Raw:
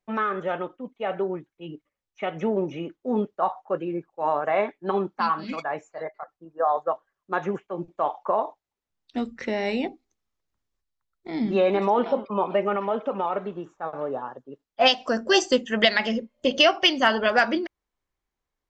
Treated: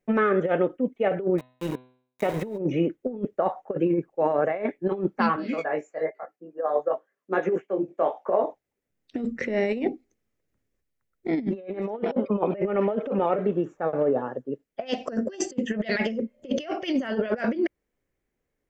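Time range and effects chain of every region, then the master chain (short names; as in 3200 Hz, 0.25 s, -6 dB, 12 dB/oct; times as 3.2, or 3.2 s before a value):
1.38–2.58 sample gate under -36.5 dBFS + de-hum 126.7 Hz, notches 33 + small resonant body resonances 990/3800 Hz, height 16 dB, ringing for 30 ms
5.36–8.44 HPF 230 Hz + chorus 1 Hz, delay 16 ms, depth 4.4 ms
whole clip: graphic EQ 125/250/500/1000/2000/4000 Hz +6/+6/+9/-8/+6/-7 dB; negative-ratio compressor -22 dBFS, ratio -0.5; gain -2 dB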